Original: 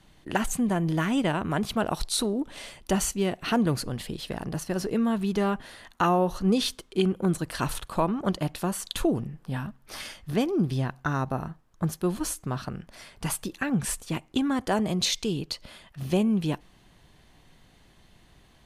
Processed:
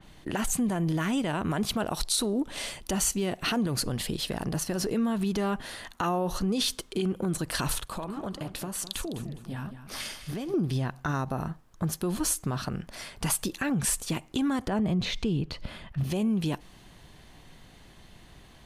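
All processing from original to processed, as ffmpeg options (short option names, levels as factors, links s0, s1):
-filter_complex "[0:a]asettb=1/sr,asplit=3[s0][s1][s2];[s0]atrim=end=7.814[s3];[s1]atrim=start=7.81:end=10.54,asetpts=PTS-STARTPTS,afade=t=in:d=0.004:c=qsin,afade=t=out:st=2.726:d=0.004:c=qsin,flanger=delay=0.6:depth=6.9:regen=-73:speed=1.9:shape=sinusoidal,acompressor=threshold=0.0178:ratio=10:attack=3.2:release=140:knee=1:detection=peak,aecho=1:1:206|412|618:0.251|0.0779|0.0241,atrim=end_sample=120393[s4];[s2]atrim=start=10.536[s5];[s3][s4]acrossfade=d=0.004:c1=hsin:c2=qsin[s6];[s6][s5]acrossfade=d=0.004:c1=qsin:c2=hsin,asettb=1/sr,asplit=3[s7][s8][s9];[s7]atrim=end=14.674[s10];[s8]atrim=start=14.67:end=16.04,asetpts=PTS-STARTPTS,afade=t=in:d=0.004:c=qsin,afade=t=out:st=1.366:d=0.004:c=qsin,acrossover=split=3200[s11][s12];[s12]acompressor=threshold=0.0112:ratio=4:attack=1:release=60[s13];[s11][s13]amix=inputs=2:normalize=0,bass=f=250:g=8,treble=f=4000:g=-11[s14];[s9]atrim=start=16.036[s15];[s10][s14]acrossfade=d=0.004:c1=hsin:c2=qsin[s16];[s16][s15]acrossfade=d=0.004:c1=qsin:c2=hsin,alimiter=limit=0.0794:level=0:latency=1:release=55,acompressor=threshold=0.0178:ratio=1.5,adynamicequalizer=threshold=0.00447:dfrequency=3700:dqfactor=0.7:tfrequency=3700:tqfactor=0.7:attack=5:release=100:ratio=0.375:range=2:mode=boostabove:tftype=highshelf,volume=1.78"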